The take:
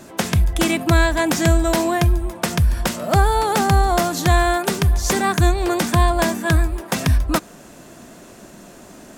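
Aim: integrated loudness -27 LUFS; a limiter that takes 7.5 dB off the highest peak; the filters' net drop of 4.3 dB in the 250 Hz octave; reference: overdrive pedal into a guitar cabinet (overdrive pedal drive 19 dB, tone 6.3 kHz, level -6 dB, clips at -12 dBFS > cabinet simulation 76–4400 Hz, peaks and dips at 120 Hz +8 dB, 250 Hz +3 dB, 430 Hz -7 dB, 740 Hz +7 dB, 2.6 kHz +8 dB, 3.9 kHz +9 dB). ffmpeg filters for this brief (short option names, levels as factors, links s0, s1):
-filter_complex "[0:a]equalizer=f=250:t=o:g=-7.5,alimiter=limit=0.251:level=0:latency=1,asplit=2[s0][s1];[s1]highpass=f=720:p=1,volume=8.91,asoftclip=type=tanh:threshold=0.251[s2];[s0][s2]amix=inputs=2:normalize=0,lowpass=f=6300:p=1,volume=0.501,highpass=76,equalizer=f=120:t=q:w=4:g=8,equalizer=f=250:t=q:w=4:g=3,equalizer=f=430:t=q:w=4:g=-7,equalizer=f=740:t=q:w=4:g=7,equalizer=f=2600:t=q:w=4:g=8,equalizer=f=3900:t=q:w=4:g=9,lowpass=f=4400:w=0.5412,lowpass=f=4400:w=1.3066,volume=0.299"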